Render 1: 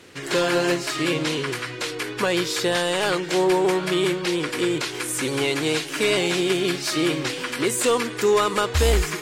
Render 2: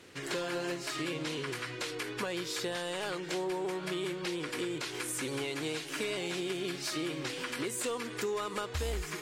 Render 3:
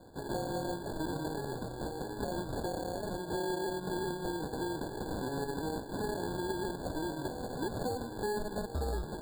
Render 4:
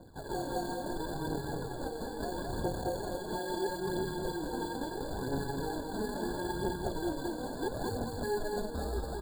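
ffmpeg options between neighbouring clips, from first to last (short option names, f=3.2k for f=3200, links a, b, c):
-af "acompressor=threshold=-26dB:ratio=4,volume=-7dB"
-af "acrusher=samples=35:mix=1:aa=0.000001,afftfilt=real='re*eq(mod(floor(b*sr/1024/1700),2),0)':imag='im*eq(mod(floor(b*sr/1024/1700),2),0)':win_size=1024:overlap=0.75"
-af "aphaser=in_gain=1:out_gain=1:delay=4.7:decay=0.56:speed=0.75:type=triangular,aecho=1:1:215:0.668,volume=-2.5dB"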